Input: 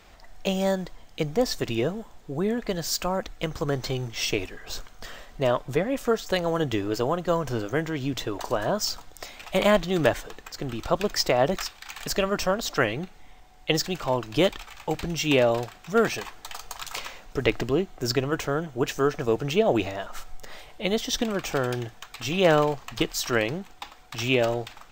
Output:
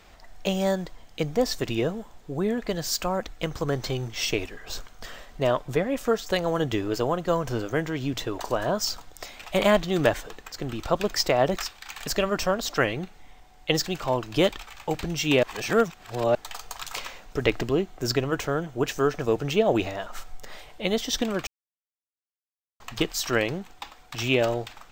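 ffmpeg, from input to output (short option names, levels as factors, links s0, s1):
-filter_complex "[0:a]asplit=5[s0][s1][s2][s3][s4];[s0]atrim=end=15.432[s5];[s1]atrim=start=15.428:end=16.352,asetpts=PTS-STARTPTS,areverse[s6];[s2]atrim=start=16.348:end=21.47,asetpts=PTS-STARTPTS,afade=t=out:st=5.118:d=0.004:c=hsin[s7];[s3]atrim=start=21.47:end=22.8,asetpts=PTS-STARTPTS,volume=0[s8];[s4]atrim=start=22.8,asetpts=PTS-STARTPTS,afade=t=in:d=0.004:c=hsin[s9];[s5][s6]acrossfade=d=0.004:c1=hsin:c2=hsin[s10];[s7][s8][s9]concat=n=3:v=0:a=1[s11];[s10][s11]acrossfade=d=0.004:c1=hsin:c2=hsin"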